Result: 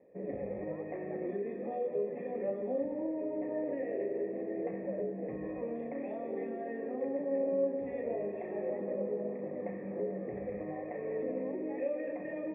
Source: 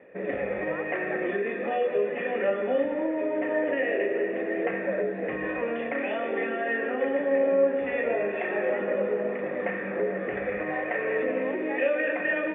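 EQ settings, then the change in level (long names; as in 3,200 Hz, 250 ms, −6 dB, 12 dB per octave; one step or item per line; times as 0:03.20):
moving average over 30 samples
dynamic equaliser 120 Hz, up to +6 dB, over −48 dBFS, Q 0.73
−7.5 dB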